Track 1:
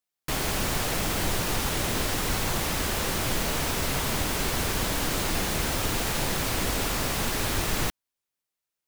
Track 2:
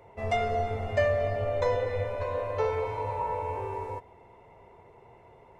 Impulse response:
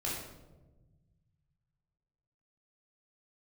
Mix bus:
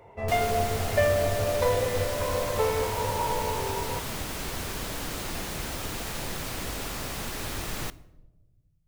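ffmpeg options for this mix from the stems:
-filter_complex "[0:a]volume=-7dB,asplit=2[a][b];[b]volume=-21dB[c];[1:a]volume=2dB[d];[2:a]atrim=start_sample=2205[e];[c][e]afir=irnorm=-1:irlink=0[f];[a][d][f]amix=inputs=3:normalize=0"

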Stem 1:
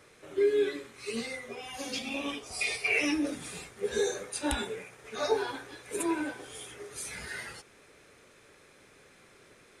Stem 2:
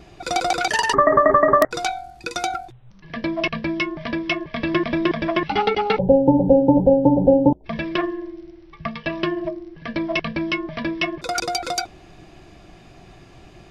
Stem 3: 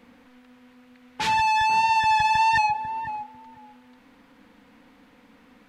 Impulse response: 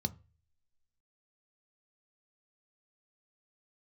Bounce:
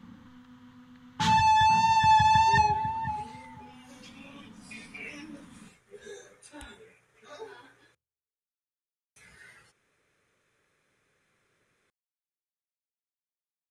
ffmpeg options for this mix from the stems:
-filter_complex "[0:a]equalizer=f=1.8k:w=1.5:g=3.5,adelay=2100,volume=-15dB,asplit=3[a][b][c];[a]atrim=end=7.95,asetpts=PTS-STARTPTS,afade=t=out:st=7.946:d=0.004:c=hsin[d];[b]atrim=start=7.95:end=9.16,asetpts=PTS-STARTPTS,volume=0[e];[c]atrim=start=9.16,asetpts=PTS-STARTPTS,afade=t=in:d=0.004:c=hsin[f];[d][e][f]concat=n=3:v=0:a=1,asplit=2[g][h];[h]volume=-18dB[i];[2:a]volume=-0.5dB,asplit=2[j][k];[k]volume=-3.5dB[l];[3:a]atrim=start_sample=2205[m];[i][l]amix=inputs=2:normalize=0[n];[n][m]afir=irnorm=-1:irlink=0[o];[g][j][o]amix=inputs=3:normalize=0"

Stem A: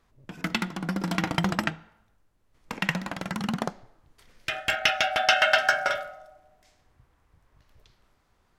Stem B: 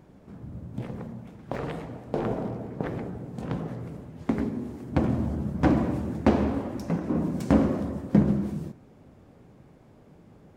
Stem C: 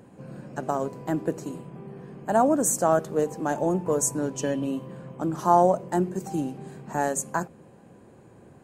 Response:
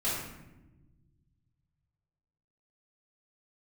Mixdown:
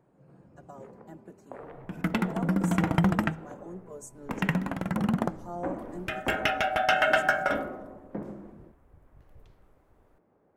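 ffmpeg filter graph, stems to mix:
-filter_complex "[0:a]equalizer=f=4.7k:w=0.79:g=-13,adelay=1600,volume=0dB[a];[1:a]acrossover=split=340 2000:gain=0.112 1 0.0794[b][c][d];[b][c][d]amix=inputs=3:normalize=0,volume=-9dB[e];[2:a]asplit=2[f][g];[g]adelay=3.9,afreqshift=0.39[h];[f][h]amix=inputs=2:normalize=1,volume=-18dB[i];[a][e][i]amix=inputs=3:normalize=0,lowshelf=f=260:g=6"

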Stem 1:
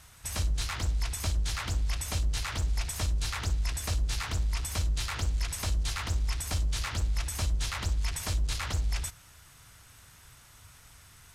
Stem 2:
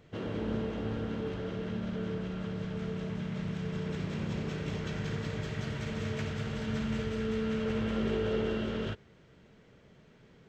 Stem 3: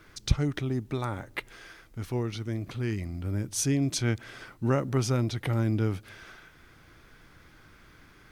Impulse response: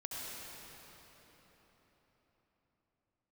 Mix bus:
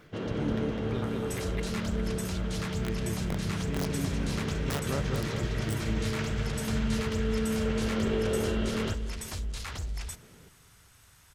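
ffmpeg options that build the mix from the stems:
-filter_complex "[0:a]adelay=1050,volume=-4dB[a];[1:a]volume=2.5dB,asplit=2[b][c];[c]volume=-14dB[d];[2:a]adynamicequalizer=threshold=0.00447:dfrequency=240:dqfactor=5.2:tfrequency=240:tqfactor=5.2:attack=5:release=100:ratio=0.375:range=4:mode=cutabove:tftype=bell,aeval=exprs='val(0)*pow(10,-20*(0.5-0.5*cos(2*PI*2.1*n/s))/20)':c=same,volume=-2.5dB,asplit=2[e][f];[f]volume=-4.5dB[g];[a][e]amix=inputs=2:normalize=0,aeval=exprs='(mod(11.2*val(0)+1,2)-1)/11.2':c=same,alimiter=level_in=3.5dB:limit=-24dB:level=0:latency=1:release=41,volume=-3.5dB,volume=0dB[h];[d][g]amix=inputs=2:normalize=0,aecho=0:1:204|408|612|816|1020|1224|1428|1632|1836:1|0.58|0.336|0.195|0.113|0.0656|0.0381|0.0221|0.0128[i];[b][h][i]amix=inputs=3:normalize=0"

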